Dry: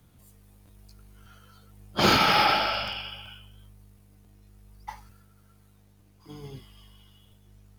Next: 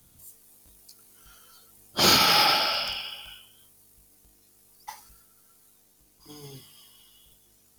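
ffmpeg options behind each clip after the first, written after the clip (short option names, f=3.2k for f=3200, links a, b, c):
-af "bass=f=250:g=-1,treble=f=4k:g=14,bandreject=f=50:t=h:w=6,bandreject=f=100:t=h:w=6,bandreject=f=150:t=h:w=6,bandreject=f=200:t=h:w=6,volume=-2dB"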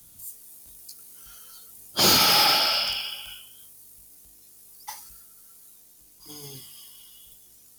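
-filter_complex "[0:a]highshelf=f=3.8k:g=9.5,acrossover=split=130|1100[a][b][c];[c]asoftclip=type=tanh:threshold=-15dB[d];[a][b][d]amix=inputs=3:normalize=0"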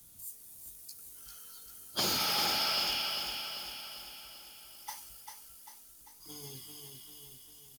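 -af "acompressor=threshold=-24dB:ratio=6,aecho=1:1:395|790|1185|1580|1975|2370|2765:0.501|0.271|0.146|0.0789|0.0426|0.023|0.0124,volume=-5dB"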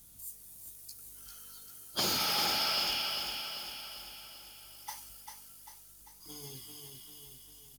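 -af "aeval=exprs='val(0)+0.000398*(sin(2*PI*50*n/s)+sin(2*PI*2*50*n/s)/2+sin(2*PI*3*50*n/s)/3+sin(2*PI*4*50*n/s)/4+sin(2*PI*5*50*n/s)/5)':c=same"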